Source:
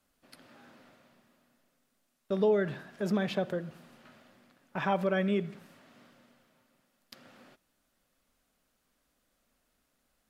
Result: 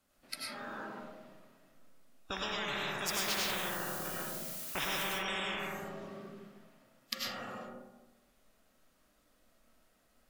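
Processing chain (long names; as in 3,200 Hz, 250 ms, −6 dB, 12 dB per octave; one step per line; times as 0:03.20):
noise reduction from a noise print of the clip's start 15 dB
0:03.06–0:05.07: background noise blue −61 dBFS
comb and all-pass reverb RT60 1.1 s, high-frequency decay 0.35×, pre-delay 60 ms, DRR −5 dB
every bin compressed towards the loudest bin 10 to 1
level −3 dB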